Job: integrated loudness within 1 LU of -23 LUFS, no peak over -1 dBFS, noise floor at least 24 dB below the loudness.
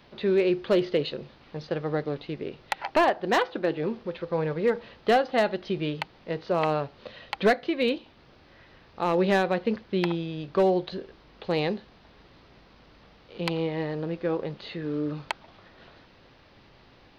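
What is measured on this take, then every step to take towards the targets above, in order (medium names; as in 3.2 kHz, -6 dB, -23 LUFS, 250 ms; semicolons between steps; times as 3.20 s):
clipped samples 0.4%; clipping level -15.0 dBFS; loudness -27.5 LUFS; peak level -15.0 dBFS; loudness target -23.0 LUFS
-> clip repair -15 dBFS; trim +4.5 dB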